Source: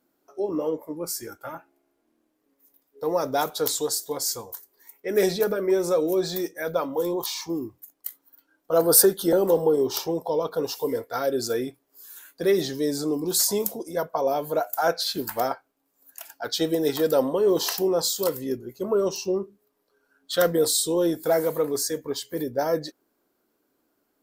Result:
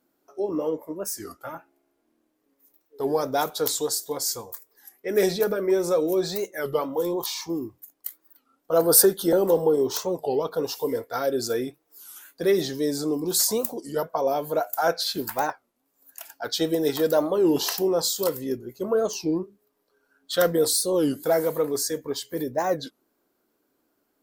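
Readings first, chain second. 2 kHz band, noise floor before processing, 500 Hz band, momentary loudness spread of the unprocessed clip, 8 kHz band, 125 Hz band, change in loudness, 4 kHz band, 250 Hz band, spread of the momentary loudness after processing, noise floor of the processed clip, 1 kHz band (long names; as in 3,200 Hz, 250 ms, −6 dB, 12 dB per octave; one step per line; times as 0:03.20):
+0.5 dB, −73 dBFS, 0.0 dB, 15 LU, 0.0 dB, 0.0 dB, 0.0 dB, 0.0 dB, +0.5 dB, 15 LU, −73 dBFS, +0.5 dB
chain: wow of a warped record 33 1/3 rpm, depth 250 cents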